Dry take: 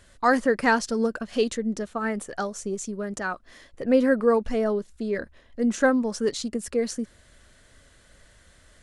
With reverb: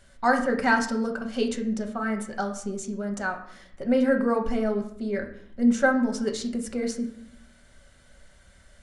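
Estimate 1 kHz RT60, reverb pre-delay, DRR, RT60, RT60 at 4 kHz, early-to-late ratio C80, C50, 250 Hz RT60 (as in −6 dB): 0.65 s, 5 ms, 2.5 dB, 0.65 s, 0.45 s, 13.0 dB, 9.5 dB, 1.0 s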